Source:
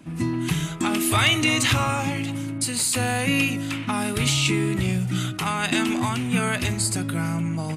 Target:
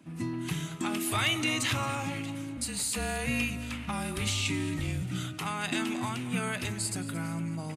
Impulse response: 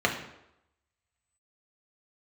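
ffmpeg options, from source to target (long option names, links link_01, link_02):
-filter_complex "[0:a]highpass=92,asettb=1/sr,asplit=3[link_01][link_02][link_03];[link_01]atrim=end=2.574[link_04];[link_02]atrim=start=2.57:end=5.02,asetpts=PTS-STARTPTS,afade=type=in:duration=0.004:curve=qsin,afade=type=out:start_time=2.446:duration=0.004:curve=qsin,afreqshift=-39[link_05];[link_03]atrim=start=5.016[link_06];[link_04][link_05]acrossfade=duration=0.004:curve1=hsin:curve2=qsin[link_07];[link_07][link_06]acrossfade=duration=0.004:curve1=qsin:curve2=hsin,aecho=1:1:224|448|672|896:0.158|0.0761|0.0365|0.0175,volume=-8.5dB"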